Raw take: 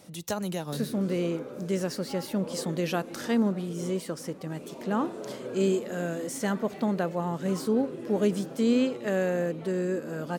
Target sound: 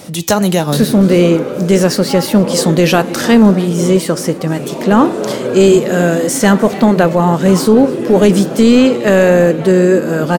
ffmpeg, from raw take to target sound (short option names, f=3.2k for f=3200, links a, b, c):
-af "flanger=delay=7.3:depth=3.5:regen=-85:speed=1.6:shape=sinusoidal,aecho=1:1:304:0.075,apsyclip=26dB,volume=-2dB"